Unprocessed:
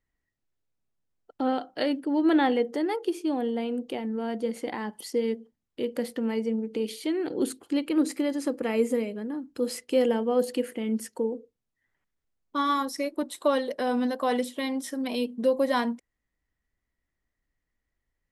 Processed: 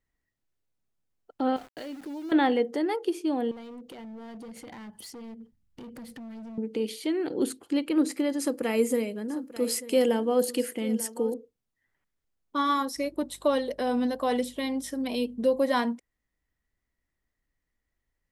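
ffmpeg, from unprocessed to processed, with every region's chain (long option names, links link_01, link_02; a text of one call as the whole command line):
ffmpeg -i in.wav -filter_complex "[0:a]asettb=1/sr,asplit=3[link_01][link_02][link_03];[link_01]atrim=end=1.564[link_04];[link_02]atrim=start=1.56:end=2.32,asetpts=PTS-STARTPTS,afade=type=in:duration=0.004:curve=qsin,afade=type=out:start_time=0.756:duration=0.004:curve=qsin,acompressor=threshold=-37dB:ratio=5:attack=3.2:release=140:knee=1:detection=peak,lowshelf=frequency=130:gain=7,aeval=exprs='val(0)*gte(abs(val(0)),0.00501)':channel_layout=same[link_05];[link_03]atrim=start=2.316[link_06];[link_04][link_05]acrossfade=duration=0.004:curve1=hsin:curve2=qsin[link_07];[link_07][link_06]acrossfade=duration=0.004:curve1=qsin:curve2=hsin,asettb=1/sr,asplit=3[link_08][link_09][link_10];[link_08]atrim=end=3.514[link_11];[link_09]atrim=start=3.51:end=6.58,asetpts=PTS-STARTPTS,afade=type=in:duration=0.004:curve=qsin,afade=type=out:start_time=3.066:duration=0.004:curve=qsin,asubboost=boost=11:cutoff=160,acompressor=threshold=-38dB:ratio=4:attack=3.2:release=140:knee=1:detection=peak,asoftclip=type=hard:threshold=-39.5dB[link_12];[link_10]atrim=start=6.576[link_13];[link_11][link_12]acrossfade=duration=0.004:curve1=hsin:curve2=qsin[link_14];[link_14][link_13]acrossfade=duration=0.004:curve1=qsin:curve2=hsin,asettb=1/sr,asplit=3[link_15][link_16][link_17];[link_15]atrim=end=8.394[link_18];[link_16]atrim=start=8.39:end=11.34,asetpts=PTS-STARTPTS,afade=type=in:duration=0.004:curve=qsin,afade=type=out:start_time=2.946:duration=0.004:curve=qsin,highshelf=frequency=5400:gain=10.5,aecho=1:1:892:0.15,atrim=end_sample=130095[link_19];[link_17]atrim=start=11.336[link_20];[link_18][link_19]acrossfade=duration=0.004:curve1=hsin:curve2=qsin[link_21];[link_21][link_20]acrossfade=duration=0.004:curve1=qsin:curve2=hsin,asettb=1/sr,asplit=3[link_22][link_23][link_24];[link_22]atrim=end=12.964[link_25];[link_23]atrim=start=12.96:end=15.62,asetpts=PTS-STARTPTS,afade=type=in:duration=0.004:curve=qsin,afade=type=out:start_time=2.656:duration=0.004:curve=qsin,aeval=exprs='val(0)+0.00126*(sin(2*PI*50*n/s)+sin(2*PI*2*50*n/s)/2+sin(2*PI*3*50*n/s)/3+sin(2*PI*4*50*n/s)/4+sin(2*PI*5*50*n/s)/5)':channel_layout=same,equalizer=frequency=1400:width_type=o:width=1.2:gain=-3.5[link_26];[link_24]atrim=start=15.616[link_27];[link_25][link_26]acrossfade=duration=0.004:curve1=hsin:curve2=qsin[link_28];[link_28][link_27]acrossfade=duration=0.004:curve1=qsin:curve2=hsin" out.wav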